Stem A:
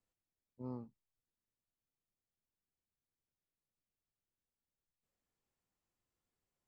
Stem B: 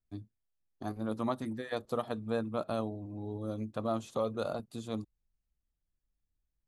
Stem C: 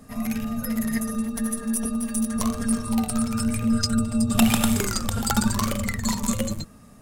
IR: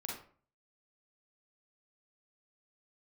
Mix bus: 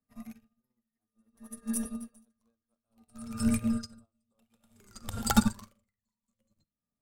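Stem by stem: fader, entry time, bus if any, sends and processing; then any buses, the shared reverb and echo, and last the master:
−3.5 dB, 0.00 s, no send, no processing
−13.5 dB, 0.15 s, no send, no processing
+0.5 dB, 0.00 s, send −10 dB, tremolo with a sine in dB 0.57 Hz, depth 24 dB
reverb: on, RT60 0.45 s, pre-delay 36 ms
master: expander for the loud parts 2.5 to 1, over −45 dBFS

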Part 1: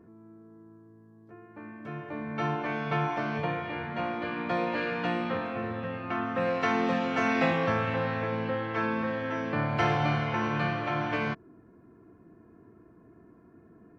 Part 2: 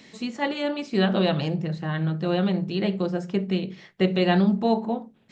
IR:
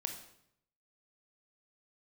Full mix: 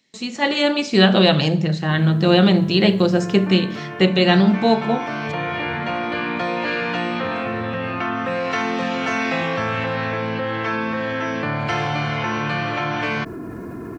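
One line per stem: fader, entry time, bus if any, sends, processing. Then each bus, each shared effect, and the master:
−9.5 dB, 1.90 s, no send, envelope flattener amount 70%
−2.0 dB, 0.00 s, send −7 dB, no processing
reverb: on, RT60 0.70 s, pre-delay 20 ms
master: noise gate with hold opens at −37 dBFS; high-shelf EQ 2,500 Hz +9 dB; automatic gain control gain up to 10 dB

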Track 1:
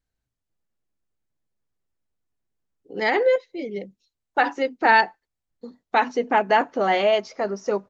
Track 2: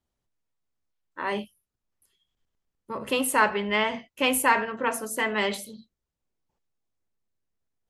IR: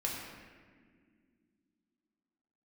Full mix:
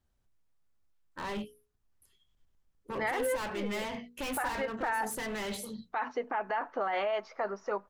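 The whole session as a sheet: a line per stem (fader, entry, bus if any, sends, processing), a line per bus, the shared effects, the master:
+1.0 dB, 0.00 s, no send, brickwall limiter −13 dBFS, peak gain reduction 6.5 dB; resonant band-pass 1,200 Hz, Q 1.4
0.0 dB, 0.00 s, no send, mains-hum notches 60/120/180/240/300/360/420/480 Hz; downward compressor 1.5 to 1, threshold −37 dBFS, peak gain reduction 8 dB; hard clipping −35 dBFS, distortion −5 dB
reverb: not used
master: low-shelf EQ 140 Hz +10 dB; brickwall limiter −24 dBFS, peak gain reduction 10.5 dB

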